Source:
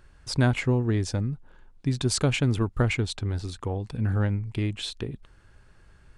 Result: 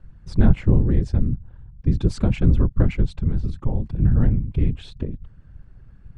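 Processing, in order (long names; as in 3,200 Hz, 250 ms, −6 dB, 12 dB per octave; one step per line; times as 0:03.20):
random phases in short frames
RIAA equalisation playback
level −4.5 dB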